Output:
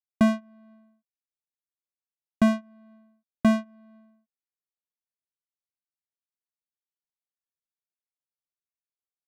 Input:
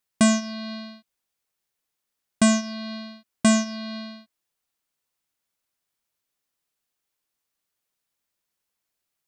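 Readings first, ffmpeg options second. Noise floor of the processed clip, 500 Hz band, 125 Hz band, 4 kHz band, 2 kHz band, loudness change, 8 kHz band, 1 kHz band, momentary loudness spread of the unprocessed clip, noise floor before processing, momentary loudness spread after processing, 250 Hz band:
below −85 dBFS, −2.5 dB, −1.5 dB, −13.5 dB, −6.5 dB, −2.0 dB, below −20 dB, −3.5 dB, 18 LU, −82 dBFS, 8 LU, −2.5 dB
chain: -af "aeval=exprs='0.398*(cos(1*acos(clip(val(0)/0.398,-1,1)))-cos(1*PI/2))+0.0178*(cos(5*acos(clip(val(0)/0.398,-1,1)))-cos(5*PI/2))+0.0631*(cos(7*acos(clip(val(0)/0.398,-1,1)))-cos(7*PI/2))':channel_layout=same,lowpass=1800,adynamicsmooth=sensitivity=4:basefreq=1200,volume=-2dB"

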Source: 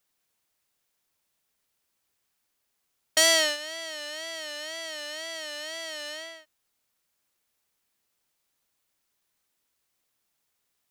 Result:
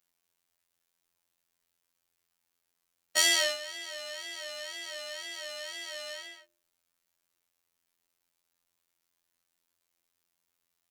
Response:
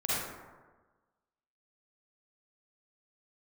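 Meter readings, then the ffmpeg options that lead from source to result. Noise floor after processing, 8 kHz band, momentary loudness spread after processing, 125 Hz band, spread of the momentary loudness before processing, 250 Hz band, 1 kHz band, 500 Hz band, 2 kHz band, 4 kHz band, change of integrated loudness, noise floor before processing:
−83 dBFS, −3.5 dB, 15 LU, can't be measured, 16 LU, −7.5 dB, −5.0 dB, −6.5 dB, −3.5 dB, −3.0 dB, −3.5 dB, −78 dBFS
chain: -af "bandreject=frequency=63.87:width_type=h:width=4,bandreject=frequency=127.74:width_type=h:width=4,bandreject=frequency=191.61:width_type=h:width=4,bandreject=frequency=255.48:width_type=h:width=4,bandreject=frequency=319.35:width_type=h:width=4,bandreject=frequency=383.22:width_type=h:width=4,bandreject=frequency=447.09:width_type=h:width=4,bandreject=frequency=510.96:width_type=h:width=4,bandreject=frequency=574.83:width_type=h:width=4,bandreject=frequency=638.7:width_type=h:width=4,afftfilt=real='hypot(re,im)*cos(PI*b)':imag='0':win_size=2048:overlap=0.75"

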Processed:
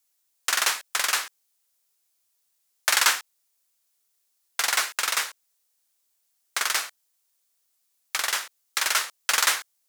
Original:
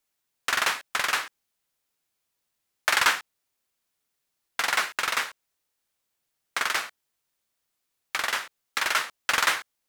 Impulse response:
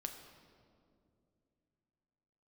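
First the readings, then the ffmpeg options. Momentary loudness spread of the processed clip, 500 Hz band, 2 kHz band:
11 LU, −2.0 dB, −1.0 dB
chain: -af "bass=frequency=250:gain=-12,treble=frequency=4000:gain=10,volume=-1.5dB"

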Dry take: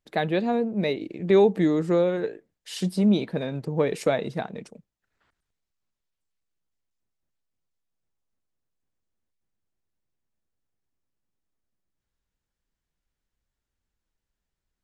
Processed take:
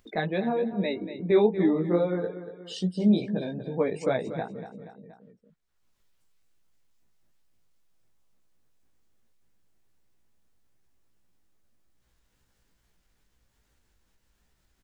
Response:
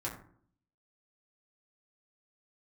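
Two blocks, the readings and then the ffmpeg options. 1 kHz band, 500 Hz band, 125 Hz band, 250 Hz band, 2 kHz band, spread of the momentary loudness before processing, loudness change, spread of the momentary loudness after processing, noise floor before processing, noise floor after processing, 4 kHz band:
−3.5 dB, −3.0 dB, −2.5 dB, −1.5 dB, −3.0 dB, 14 LU, −2.5 dB, 16 LU, −85 dBFS, −72 dBFS, −4.0 dB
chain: -filter_complex "[0:a]afftdn=noise_reduction=30:noise_floor=-38,flanger=delay=15.5:depth=3.7:speed=2.4,asplit=2[link_01][link_02];[link_02]aecho=0:1:238|476|714:0.251|0.0653|0.017[link_03];[link_01][link_03]amix=inputs=2:normalize=0,acompressor=mode=upward:threshold=-33dB:ratio=2.5"

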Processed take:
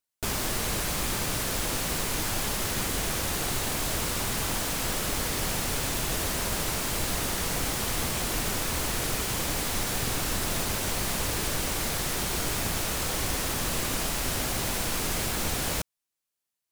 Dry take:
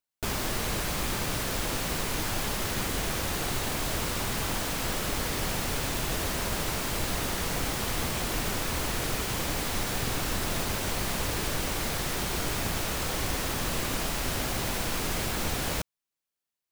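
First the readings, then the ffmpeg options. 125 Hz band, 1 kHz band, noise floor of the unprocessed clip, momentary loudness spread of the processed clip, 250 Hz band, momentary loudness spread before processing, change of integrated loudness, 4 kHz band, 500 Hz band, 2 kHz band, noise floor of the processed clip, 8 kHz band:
0.0 dB, 0.0 dB, below −85 dBFS, 0 LU, 0.0 dB, 0 LU, +1.5 dB, +1.5 dB, 0.0 dB, +0.5 dB, below −85 dBFS, +4.0 dB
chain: -af "equalizer=frequency=9900:width=0.54:gain=4.5"

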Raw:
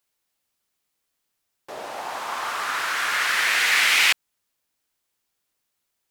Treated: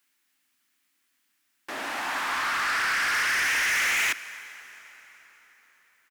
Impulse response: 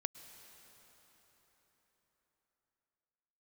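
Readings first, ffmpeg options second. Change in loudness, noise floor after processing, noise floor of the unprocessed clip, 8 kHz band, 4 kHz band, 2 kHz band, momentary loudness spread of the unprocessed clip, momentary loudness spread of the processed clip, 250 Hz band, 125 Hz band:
−4.5 dB, −73 dBFS, −78 dBFS, −3.5 dB, −7.5 dB, −2.5 dB, 16 LU, 17 LU, +2.0 dB, can't be measured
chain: -filter_complex "[0:a]acrossover=split=3000[link_01][link_02];[link_02]acompressor=threshold=-38dB:ratio=4:attack=1:release=60[link_03];[link_01][link_03]amix=inputs=2:normalize=0,firequalizer=gain_entry='entry(140,0);entry(270,14);entry(440,-3);entry(1700,12);entry(3900,5)':delay=0.05:min_phase=1,asoftclip=type=tanh:threshold=-22.5dB,asplit=2[link_04][link_05];[1:a]atrim=start_sample=2205,lowshelf=frequency=320:gain=-11[link_06];[link_05][link_06]afir=irnorm=-1:irlink=0,volume=3dB[link_07];[link_04][link_07]amix=inputs=2:normalize=0,volume=-7.5dB"

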